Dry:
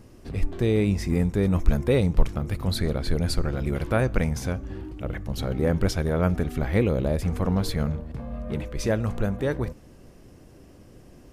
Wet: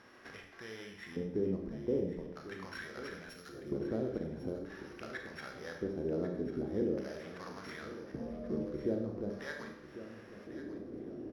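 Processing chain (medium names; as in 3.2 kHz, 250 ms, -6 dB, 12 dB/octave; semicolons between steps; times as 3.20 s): sorted samples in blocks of 8 samples; 3.29–3.72 s: pre-emphasis filter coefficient 0.9; compression 4:1, threshold -38 dBFS, peak gain reduction 22.5 dB; LFO band-pass square 0.43 Hz 340–1700 Hz; on a send: feedback delay 1097 ms, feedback 54%, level -14 dB; on the sum: Schroeder reverb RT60 0.66 s, combs from 28 ms, DRR 2.5 dB; trim +10 dB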